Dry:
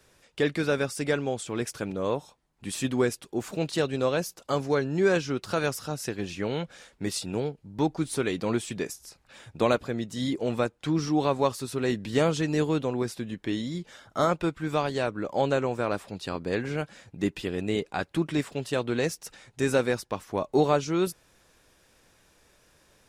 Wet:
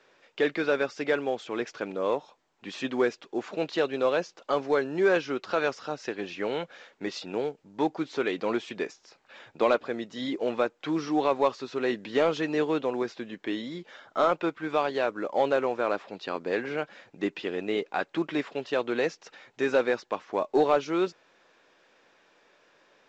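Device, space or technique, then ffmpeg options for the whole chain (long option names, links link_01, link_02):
telephone: -af "highpass=340,lowpass=3300,asoftclip=type=tanh:threshold=-13.5dB,volume=2.5dB" -ar 16000 -c:a pcm_mulaw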